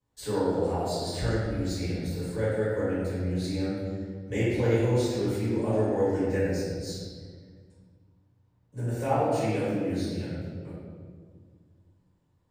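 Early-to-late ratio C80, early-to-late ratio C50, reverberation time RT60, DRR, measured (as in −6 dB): −0.5 dB, −3.0 dB, 1.8 s, −12.5 dB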